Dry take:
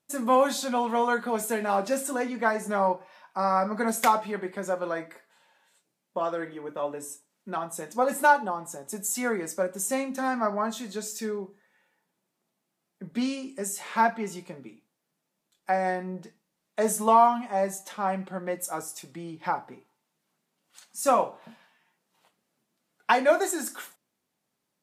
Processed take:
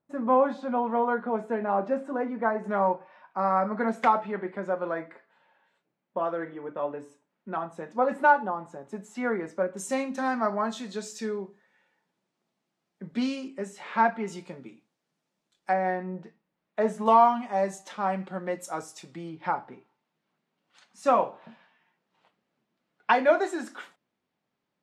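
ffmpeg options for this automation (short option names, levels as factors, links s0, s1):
-af "asetnsamples=n=441:p=0,asendcmd='2.64 lowpass f 2200;9.77 lowpass f 5700;13.48 lowpass f 3100;14.28 lowpass f 6600;15.73 lowpass f 2500;17.06 lowpass f 5700;19.29 lowpass f 3400',lowpass=1300"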